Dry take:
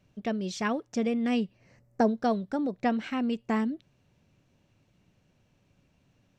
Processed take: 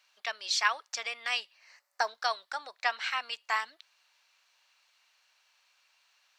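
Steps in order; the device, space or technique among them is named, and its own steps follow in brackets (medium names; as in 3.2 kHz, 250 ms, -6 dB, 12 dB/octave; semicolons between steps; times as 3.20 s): headphones lying on a table (high-pass 1 kHz 24 dB/octave; peaking EQ 4.4 kHz +7.5 dB 0.42 oct); trim +7 dB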